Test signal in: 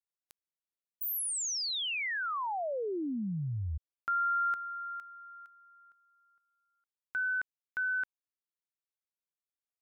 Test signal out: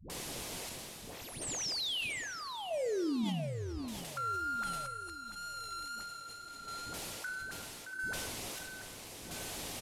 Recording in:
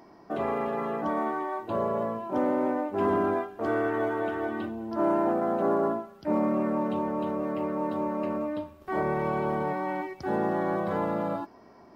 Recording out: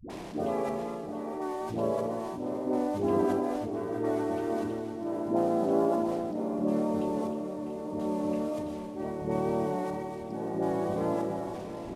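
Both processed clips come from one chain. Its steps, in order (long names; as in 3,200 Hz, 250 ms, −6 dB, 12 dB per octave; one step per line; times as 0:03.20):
linear delta modulator 64 kbit/s, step −38.5 dBFS
parametric band 1,400 Hz −9.5 dB 1.2 octaves
harmonic and percussive parts rebalanced harmonic −3 dB
high-shelf EQ 3,000 Hz −11.5 dB
reversed playback
upward compression, threshold −34 dBFS
reversed playback
square-wave tremolo 0.76 Hz, depth 60%, duty 45%
all-pass dispersion highs, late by 100 ms, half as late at 370 Hz
tape wow and flutter 2.1 Hz 22 cents
repeating echo 687 ms, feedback 45%, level −11 dB
reverb whose tail is shaped and stops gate 310 ms falling, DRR 11.5 dB
level that may fall only so fast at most 20 dB per second
level +2.5 dB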